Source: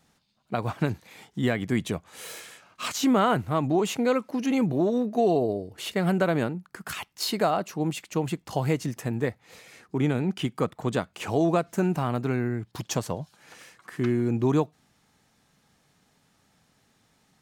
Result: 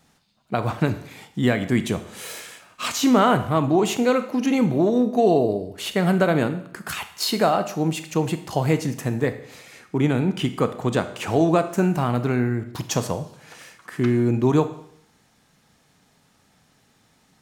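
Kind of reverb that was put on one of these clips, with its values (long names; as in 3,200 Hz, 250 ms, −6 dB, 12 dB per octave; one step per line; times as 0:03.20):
four-comb reverb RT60 0.68 s, combs from 25 ms, DRR 10 dB
level +4.5 dB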